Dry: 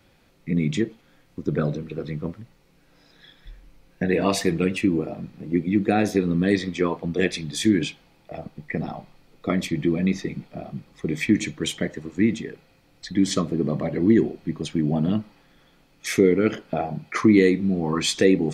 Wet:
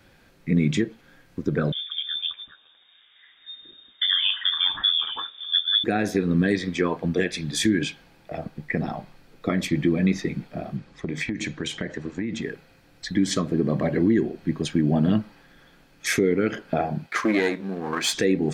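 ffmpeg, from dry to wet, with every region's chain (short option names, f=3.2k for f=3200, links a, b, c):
-filter_complex "[0:a]asettb=1/sr,asplit=3[a][b][c];[a]atrim=end=1.724[d];[b]atrim=start=1.72:end=5.84,asetpts=PTS-STARTPTS,afade=t=in:d=0.004:c=qsin,afade=t=out:st=4.116:d=0.004:c=qsin,lowpass=f=3.1k:t=q:w=0.5098,lowpass=f=3.1k:t=q:w=0.6013,lowpass=f=3.1k:t=q:w=0.9,lowpass=f=3.1k:t=q:w=2.563,afreqshift=-3700,equalizer=f=1.8k:w=0.47:g=-3,acrossover=split=1300[e][f];[e]adelay=410[g];[g][f]amix=inputs=2:normalize=0,atrim=end_sample=181692[h];[c]atrim=start=5.836[i];[d][h]acrossfade=d=0.004:c1=hsin:c2=qsin[j];[j][i]acrossfade=d=0.004:c1=qsin:c2=hsin,asettb=1/sr,asplit=3[k][l][m];[k]atrim=end=10.774[n];[l]atrim=start=10.77:end=12.42,asetpts=PTS-STARTPTS,afade=t=in:d=0.004:c=qsin,afade=t=out:st=1.646:d=0.004:c=qsin,acompressor=threshold=-26dB:ratio=16:attack=3.2:release=140:knee=1:detection=peak,lowpass=7.1k[o];[m]atrim=start=12.416[p];[n][o]acrossfade=d=0.004:c1=hsin:c2=qsin[q];[q][p]acrossfade=d=0.004:c1=qsin:c2=hsin,asettb=1/sr,asplit=3[r][s][t];[r]atrim=end=17.064[u];[s]atrim=start=17.06:end=18.13,asetpts=PTS-STARTPTS,afade=t=in:d=0.004:c=qsin,afade=t=out:st=1.066:d=0.004:c=qsin,aeval=exprs='if(lt(val(0),0),0.447*val(0),val(0))':c=same,highpass=f=520:p=1[v];[t]atrim=start=18.126[w];[u][v]acrossfade=d=0.004:c1=hsin:c2=qsin[x];[x][w]acrossfade=d=0.004:c1=qsin:c2=hsin,equalizer=f=1.6k:w=6.9:g=9,alimiter=limit=-13.5dB:level=0:latency=1:release=238,volume=2.5dB"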